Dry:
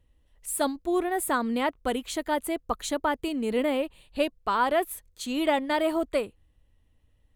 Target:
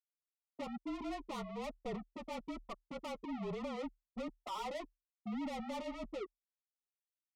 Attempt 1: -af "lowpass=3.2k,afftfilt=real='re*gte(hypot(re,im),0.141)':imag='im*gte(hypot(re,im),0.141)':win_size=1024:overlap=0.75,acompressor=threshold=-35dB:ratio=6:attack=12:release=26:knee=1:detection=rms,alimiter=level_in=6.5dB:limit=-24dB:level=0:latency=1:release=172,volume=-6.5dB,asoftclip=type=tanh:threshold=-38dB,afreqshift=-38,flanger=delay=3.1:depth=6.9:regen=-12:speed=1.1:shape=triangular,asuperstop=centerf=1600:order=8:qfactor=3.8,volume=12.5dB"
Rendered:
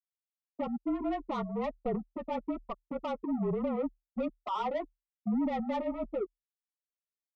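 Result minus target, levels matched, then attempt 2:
soft clip: distortion -7 dB
-af "lowpass=3.2k,afftfilt=real='re*gte(hypot(re,im),0.141)':imag='im*gte(hypot(re,im),0.141)':win_size=1024:overlap=0.75,acompressor=threshold=-35dB:ratio=6:attack=12:release=26:knee=1:detection=rms,alimiter=level_in=6.5dB:limit=-24dB:level=0:latency=1:release=172,volume=-6.5dB,asoftclip=type=tanh:threshold=-49.5dB,afreqshift=-38,flanger=delay=3.1:depth=6.9:regen=-12:speed=1.1:shape=triangular,asuperstop=centerf=1600:order=8:qfactor=3.8,volume=12.5dB"

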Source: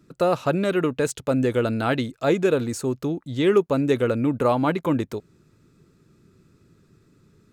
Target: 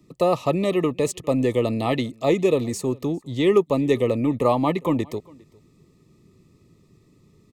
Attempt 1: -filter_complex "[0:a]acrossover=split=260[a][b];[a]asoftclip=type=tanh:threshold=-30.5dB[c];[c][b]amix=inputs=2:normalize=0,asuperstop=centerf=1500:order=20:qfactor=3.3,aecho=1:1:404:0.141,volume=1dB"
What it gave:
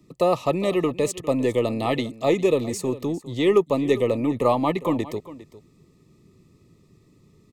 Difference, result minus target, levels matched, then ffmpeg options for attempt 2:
soft clip: distortion +11 dB; echo-to-direct +6.5 dB
-filter_complex "[0:a]acrossover=split=260[a][b];[a]asoftclip=type=tanh:threshold=-21.5dB[c];[c][b]amix=inputs=2:normalize=0,asuperstop=centerf=1500:order=20:qfactor=3.3,aecho=1:1:404:0.0501,volume=1dB"

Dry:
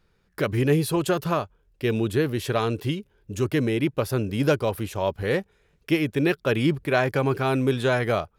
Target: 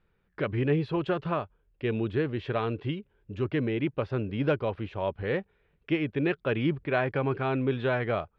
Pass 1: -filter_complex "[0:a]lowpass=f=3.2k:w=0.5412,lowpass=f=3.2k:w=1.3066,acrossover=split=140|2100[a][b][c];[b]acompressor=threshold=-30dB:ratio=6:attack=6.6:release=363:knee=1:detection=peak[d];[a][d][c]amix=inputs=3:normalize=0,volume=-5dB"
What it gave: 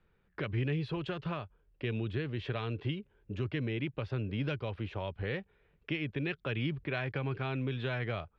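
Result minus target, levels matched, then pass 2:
compressor: peak gain reduction +14.5 dB
-af "lowpass=f=3.2k:w=0.5412,lowpass=f=3.2k:w=1.3066,volume=-5dB"

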